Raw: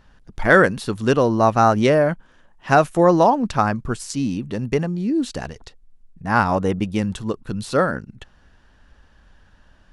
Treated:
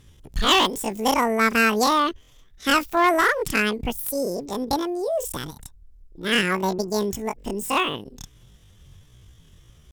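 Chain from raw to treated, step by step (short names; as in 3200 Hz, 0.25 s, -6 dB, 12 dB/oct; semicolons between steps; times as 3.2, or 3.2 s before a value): pitch shift +12 st; tone controls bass +7 dB, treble +8 dB; one-sided clip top -12.5 dBFS; gain -4 dB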